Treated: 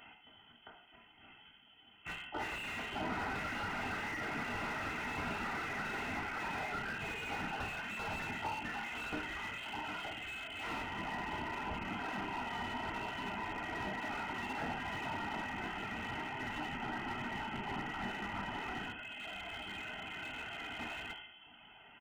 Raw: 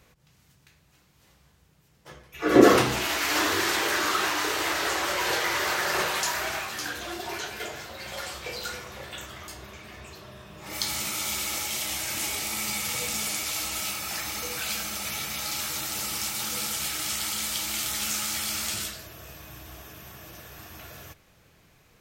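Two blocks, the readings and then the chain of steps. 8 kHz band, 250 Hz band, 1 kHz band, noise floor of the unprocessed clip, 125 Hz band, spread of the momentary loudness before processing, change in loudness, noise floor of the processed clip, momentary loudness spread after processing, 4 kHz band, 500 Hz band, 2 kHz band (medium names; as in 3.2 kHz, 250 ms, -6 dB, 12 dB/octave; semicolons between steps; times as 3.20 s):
-28.5 dB, -13.0 dB, -7.5 dB, -62 dBFS, -6.5 dB, 20 LU, -13.0 dB, -61 dBFS, 8 LU, -15.5 dB, -16.5 dB, -8.5 dB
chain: tracing distortion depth 0.25 ms; reverb removal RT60 1.2 s; high-pass 390 Hz 6 dB/octave; peaking EQ 760 Hz -4 dB; comb 1.7 ms, depth 80%; compression 12:1, threshold -38 dBFS, peak gain reduction 23.5 dB; simulated room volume 260 m³, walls mixed, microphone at 0.99 m; frequency inversion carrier 3.2 kHz; slew-rate limiter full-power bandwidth 12 Hz; trim +4.5 dB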